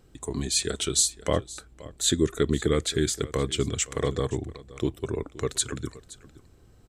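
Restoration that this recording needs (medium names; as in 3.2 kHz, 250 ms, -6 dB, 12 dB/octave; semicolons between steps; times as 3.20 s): inverse comb 521 ms -19 dB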